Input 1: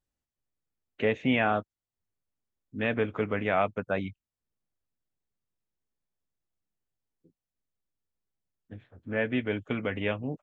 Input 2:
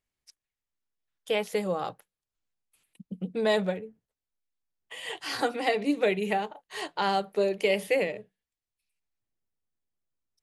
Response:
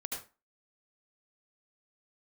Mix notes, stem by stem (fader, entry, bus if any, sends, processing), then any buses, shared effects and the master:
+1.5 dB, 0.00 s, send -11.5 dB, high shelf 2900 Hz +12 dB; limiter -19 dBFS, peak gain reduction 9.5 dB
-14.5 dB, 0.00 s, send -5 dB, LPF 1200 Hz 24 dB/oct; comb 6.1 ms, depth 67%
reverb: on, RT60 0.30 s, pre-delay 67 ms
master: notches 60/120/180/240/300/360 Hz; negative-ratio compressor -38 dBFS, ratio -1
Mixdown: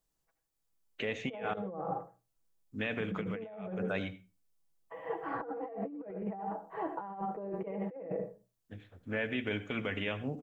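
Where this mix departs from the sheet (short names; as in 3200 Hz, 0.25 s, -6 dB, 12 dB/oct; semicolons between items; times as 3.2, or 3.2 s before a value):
stem 1 +1.5 dB -> -10.0 dB; stem 2 -14.5 dB -> -5.5 dB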